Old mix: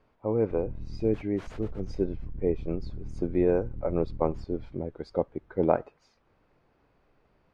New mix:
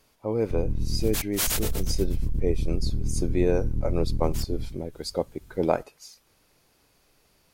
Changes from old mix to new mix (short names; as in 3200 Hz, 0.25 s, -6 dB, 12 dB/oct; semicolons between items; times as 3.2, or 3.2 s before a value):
background +11.5 dB; master: remove LPF 1600 Hz 12 dB/oct